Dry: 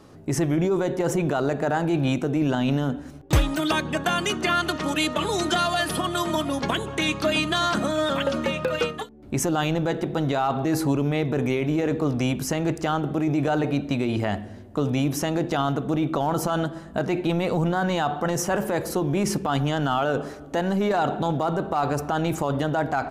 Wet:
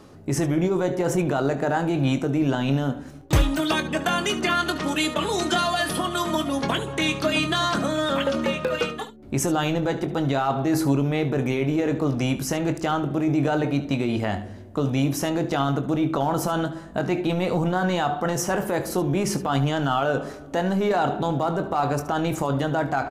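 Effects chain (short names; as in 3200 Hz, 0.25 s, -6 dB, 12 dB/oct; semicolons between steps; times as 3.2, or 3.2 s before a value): early reflections 22 ms -10 dB, 73 ms -15 dB; reverse; upward compressor, threshold -33 dBFS; reverse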